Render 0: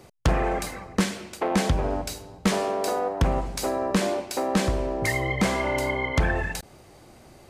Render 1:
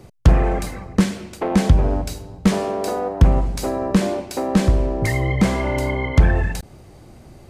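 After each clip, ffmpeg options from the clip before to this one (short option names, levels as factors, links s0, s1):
-af "lowshelf=f=290:g=11.5"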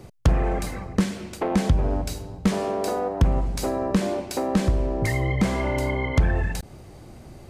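-af "acompressor=threshold=0.0501:ratio=1.5"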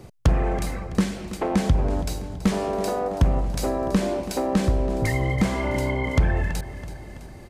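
-af "aecho=1:1:329|658|987|1316|1645|1974:0.178|0.105|0.0619|0.0365|0.0215|0.0127"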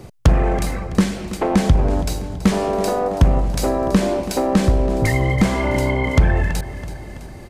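-af "aeval=exprs='0.355*(cos(1*acos(clip(val(0)/0.355,-1,1)))-cos(1*PI/2))+0.0112*(cos(4*acos(clip(val(0)/0.355,-1,1)))-cos(4*PI/2))':c=same,volume=1.88"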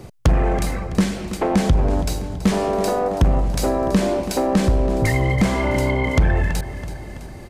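-af "asoftclip=type=tanh:threshold=0.422"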